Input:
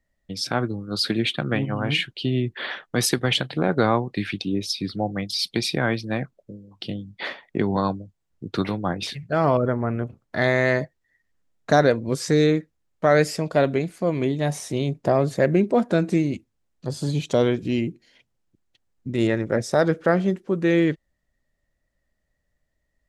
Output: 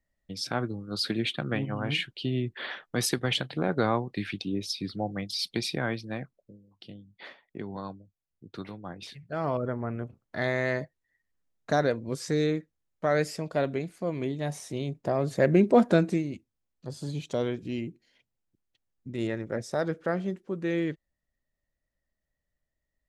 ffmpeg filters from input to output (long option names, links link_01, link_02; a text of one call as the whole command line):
ffmpeg -i in.wav -af "volume=10dB,afade=type=out:start_time=5.57:duration=1.28:silence=0.354813,afade=type=in:start_time=8.88:duration=0.92:silence=0.446684,afade=type=in:start_time=15.16:duration=0.68:silence=0.354813,afade=type=out:start_time=15.84:duration=0.39:silence=0.298538" out.wav